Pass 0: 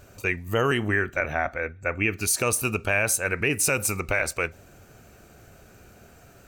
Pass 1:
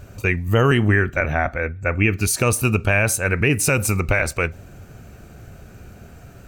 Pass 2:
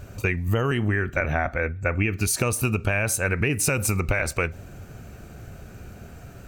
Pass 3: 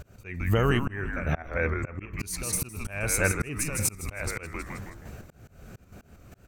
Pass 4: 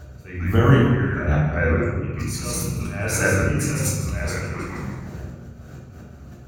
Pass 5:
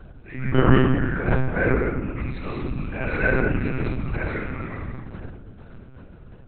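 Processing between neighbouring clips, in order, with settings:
tone controls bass +8 dB, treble -3 dB; trim +4.5 dB
compression, threshold -19 dBFS, peak gain reduction 8.5 dB
trance gate "xx.xxxxxxx.xxx.." 190 bpm -12 dB; frequency-shifting echo 159 ms, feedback 43%, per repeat -140 Hz, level -8 dB; slow attack 323 ms
reverberation RT60 1.1 s, pre-delay 3 ms, DRR -4.5 dB; trim -5.5 dB
in parallel at -10 dB: crossover distortion -35 dBFS; on the sum: monotone LPC vocoder at 8 kHz 130 Hz; trim -3 dB

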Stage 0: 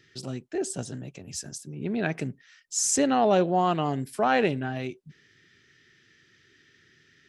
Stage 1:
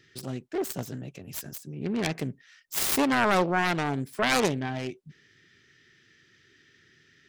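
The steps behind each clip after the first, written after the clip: self-modulated delay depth 0.62 ms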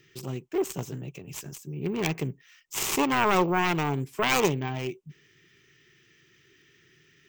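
rippled EQ curve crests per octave 0.72, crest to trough 7 dB; careless resampling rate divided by 2×, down filtered, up hold

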